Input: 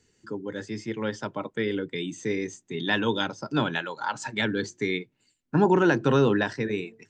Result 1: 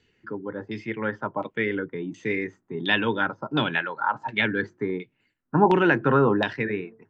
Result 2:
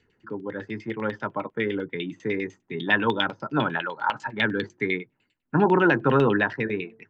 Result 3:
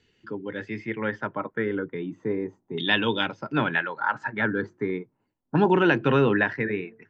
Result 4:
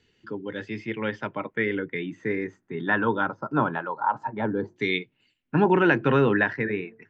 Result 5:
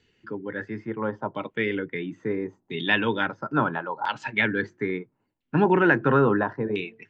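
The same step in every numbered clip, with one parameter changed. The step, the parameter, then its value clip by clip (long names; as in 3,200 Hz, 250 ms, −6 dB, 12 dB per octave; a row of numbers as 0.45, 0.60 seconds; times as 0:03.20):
auto-filter low-pass, speed: 1.4, 10, 0.36, 0.21, 0.74 Hertz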